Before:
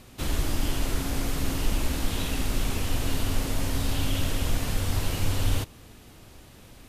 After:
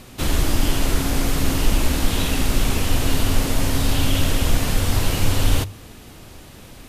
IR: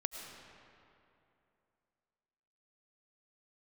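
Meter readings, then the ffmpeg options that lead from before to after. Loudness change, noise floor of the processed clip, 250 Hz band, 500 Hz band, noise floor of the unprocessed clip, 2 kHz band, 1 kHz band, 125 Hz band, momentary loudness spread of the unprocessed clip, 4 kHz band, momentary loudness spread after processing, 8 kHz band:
+7.5 dB, −42 dBFS, +8.0 dB, +8.0 dB, −50 dBFS, +8.0 dB, +8.0 dB, +7.0 dB, 2 LU, +8.0 dB, 2 LU, +8.0 dB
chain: -af "bandreject=frequency=50:width_type=h:width=6,bandreject=frequency=100:width_type=h:width=6,volume=8dB"

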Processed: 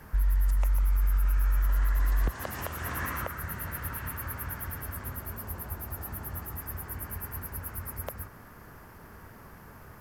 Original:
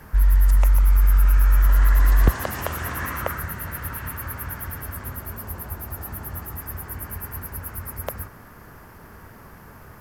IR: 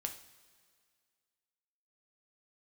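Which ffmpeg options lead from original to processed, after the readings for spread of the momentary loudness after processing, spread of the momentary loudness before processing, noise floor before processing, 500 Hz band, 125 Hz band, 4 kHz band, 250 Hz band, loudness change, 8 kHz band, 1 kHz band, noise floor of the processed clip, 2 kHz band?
22 LU, 15 LU, −45 dBFS, −8.0 dB, −9.0 dB, −7.5 dB, −7.5 dB, −8.5 dB, −6.0 dB, −7.0 dB, −50 dBFS, −6.5 dB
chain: -af "alimiter=limit=-14.5dB:level=0:latency=1:release=272,volume=-4.5dB"

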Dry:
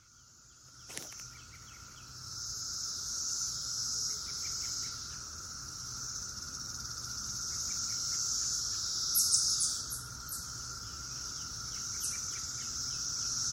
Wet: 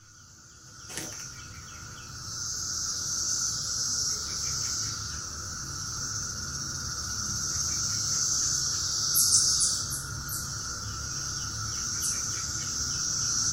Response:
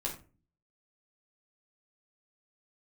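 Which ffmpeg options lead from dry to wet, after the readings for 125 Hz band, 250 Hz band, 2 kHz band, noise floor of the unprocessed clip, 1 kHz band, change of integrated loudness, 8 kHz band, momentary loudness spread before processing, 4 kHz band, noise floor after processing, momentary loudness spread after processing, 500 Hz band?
+11.0 dB, +10.0 dB, +9.5 dB, −56 dBFS, +8.0 dB, +6.5 dB, +7.0 dB, 14 LU, +5.5 dB, −49 dBFS, 13 LU, +9.0 dB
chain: -filter_complex "[1:a]atrim=start_sample=2205,asetrate=70560,aresample=44100[link_01];[0:a][link_01]afir=irnorm=-1:irlink=0,volume=9dB"

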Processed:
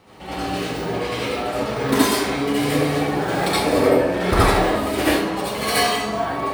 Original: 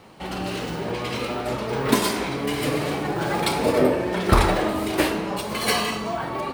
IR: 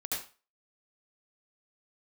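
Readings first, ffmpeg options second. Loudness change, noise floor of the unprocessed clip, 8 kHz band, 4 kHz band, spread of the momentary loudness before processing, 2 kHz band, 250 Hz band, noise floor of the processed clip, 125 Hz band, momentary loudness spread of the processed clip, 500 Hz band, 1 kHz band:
+3.5 dB, −31 dBFS, +3.5 dB, +3.0 dB, 9 LU, +3.5 dB, +3.5 dB, −28 dBFS, +2.0 dB, 8 LU, +3.5 dB, +3.5 dB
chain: -filter_complex "[1:a]atrim=start_sample=2205[link_01];[0:a][link_01]afir=irnorm=-1:irlink=0"

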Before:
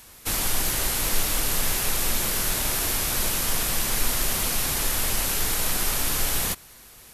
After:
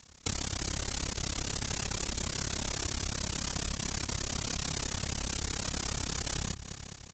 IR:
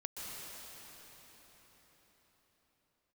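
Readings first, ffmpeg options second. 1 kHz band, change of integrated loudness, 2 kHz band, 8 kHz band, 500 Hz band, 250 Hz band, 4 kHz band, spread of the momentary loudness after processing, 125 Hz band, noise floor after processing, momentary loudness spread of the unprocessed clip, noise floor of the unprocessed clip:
−9.5 dB, −10.5 dB, −10.0 dB, −10.0 dB, −8.0 dB, −4.0 dB, −7.5 dB, 1 LU, −2.0 dB, −50 dBFS, 1 LU, −48 dBFS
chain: -af "acontrast=83,afftdn=noise_reduction=12:noise_floor=-28,highshelf=frequency=2600:gain=-3,bandreject=frequency=60:width_type=h:width=6,bandreject=frequency=120:width_type=h:width=6,bandreject=frequency=180:width_type=h:width=6,aeval=exprs='clip(val(0),-1,0.188)':channel_layout=same,highpass=frequency=46:width=0.5412,highpass=frequency=46:width=1.3066,bass=frequency=250:gain=8,treble=frequency=4000:gain=9,aecho=1:1:208|416|624|832|1040:0.126|0.073|0.0424|0.0246|0.0142,tremolo=f=34:d=0.947,aresample=16000,aresample=44100,acompressor=threshold=-30dB:ratio=12"

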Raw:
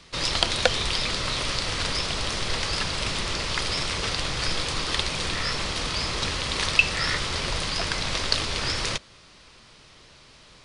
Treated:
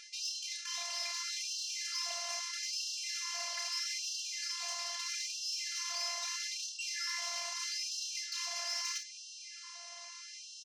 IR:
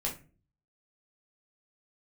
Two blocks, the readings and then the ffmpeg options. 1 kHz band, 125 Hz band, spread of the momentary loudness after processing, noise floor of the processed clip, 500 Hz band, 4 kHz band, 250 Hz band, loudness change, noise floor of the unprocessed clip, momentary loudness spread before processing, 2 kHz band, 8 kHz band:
−16.0 dB, below −40 dB, 11 LU, −50 dBFS, −22.5 dB, −11.0 dB, below −40 dB, −11.0 dB, −52 dBFS, 5 LU, −14.5 dB, −3.0 dB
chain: -filter_complex "[0:a]areverse,acompressor=threshold=-35dB:ratio=16,areverse,volume=35.5dB,asoftclip=hard,volume=-35.5dB,afftfilt=real='hypot(re,im)*cos(PI*b)':imag='0':win_size=512:overlap=0.75,highpass=frequency=120:width=0.5412,highpass=frequency=120:width=1.3066,equalizer=frequency=180:width_type=q:width=4:gain=7,equalizer=frequency=440:width_type=q:width=4:gain=-3,equalizer=frequency=880:width_type=q:width=4:gain=-5,equalizer=frequency=1400:width_type=q:width=4:gain=-6,equalizer=frequency=3500:width_type=q:width=4:gain=-6,equalizer=frequency=5900:width_type=q:width=4:gain=9,lowpass=frequency=8800:width=0.5412,lowpass=frequency=8800:width=1.3066,asoftclip=type=tanh:threshold=-29.5dB,asplit=2[link_01][link_02];[link_02]aecho=0:1:30|45|55:0.398|0.15|0.282[link_03];[link_01][link_03]amix=inputs=2:normalize=0,afftfilt=real='re*gte(b*sr/1024,530*pow(2700/530,0.5+0.5*sin(2*PI*0.78*pts/sr)))':imag='im*gte(b*sr/1024,530*pow(2700/530,0.5+0.5*sin(2*PI*0.78*pts/sr)))':win_size=1024:overlap=0.75,volume=6.5dB"

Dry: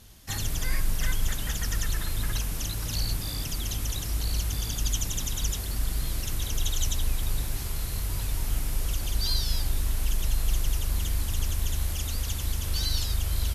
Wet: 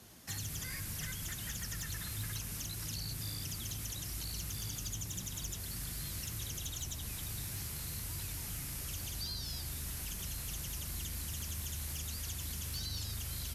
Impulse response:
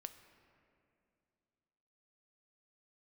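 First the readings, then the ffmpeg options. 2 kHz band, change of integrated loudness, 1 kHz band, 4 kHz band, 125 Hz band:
−8.5 dB, −9.0 dB, −11.0 dB, −9.0 dB, −10.5 dB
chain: -filter_complex "[0:a]highpass=120,acrossover=split=170|1600[link_01][link_02][link_03];[link_01]acompressor=threshold=-36dB:ratio=4[link_04];[link_02]acompressor=threshold=-57dB:ratio=4[link_05];[link_03]acompressor=threshold=-37dB:ratio=4[link_06];[link_04][link_05][link_06]amix=inputs=3:normalize=0,acrossover=split=3000[link_07][link_08];[link_07]asoftclip=type=tanh:threshold=-36dB[link_09];[link_09][link_08]amix=inputs=2:normalize=0,flanger=delay=2.7:depth=7.8:regen=77:speed=0.73:shape=sinusoidal,asplit=2[link_10][link_11];[link_11]lowpass=frequency=3700:width=0.5412,lowpass=frequency=3700:width=1.3066[link_12];[1:a]atrim=start_sample=2205[link_13];[link_12][link_13]afir=irnorm=-1:irlink=0,volume=-3dB[link_14];[link_10][link_14]amix=inputs=2:normalize=0,aeval=exprs='0.0224*(abs(mod(val(0)/0.0224+3,4)-2)-1)':channel_layout=same,volume=2dB"

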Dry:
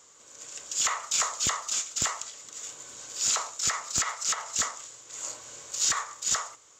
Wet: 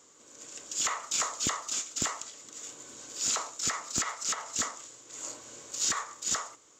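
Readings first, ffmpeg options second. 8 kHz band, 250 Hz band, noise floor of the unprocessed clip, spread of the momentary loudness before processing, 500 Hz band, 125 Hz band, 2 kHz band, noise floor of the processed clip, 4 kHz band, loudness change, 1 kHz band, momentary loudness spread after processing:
−3.5 dB, +4.5 dB, −56 dBFS, 15 LU, 0.0 dB, −1.0 dB, −3.5 dB, −59 dBFS, −3.5 dB, −3.5 dB, −3.0 dB, 15 LU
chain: -af "equalizer=frequency=280:width_type=o:width=1.3:gain=10,volume=-3.5dB"

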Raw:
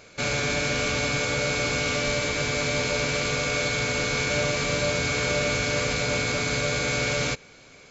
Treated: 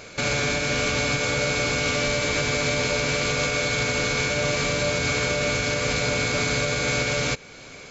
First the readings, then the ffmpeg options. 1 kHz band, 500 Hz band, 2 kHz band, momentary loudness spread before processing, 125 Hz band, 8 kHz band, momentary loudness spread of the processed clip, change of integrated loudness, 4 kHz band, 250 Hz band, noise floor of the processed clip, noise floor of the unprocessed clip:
+1.5 dB, +1.5 dB, +1.5 dB, 1 LU, +1.5 dB, can't be measured, 1 LU, +1.5 dB, +1.5 dB, +1.5 dB, −43 dBFS, −50 dBFS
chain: -af "alimiter=limit=-22dB:level=0:latency=1:release=357,volume=8dB"

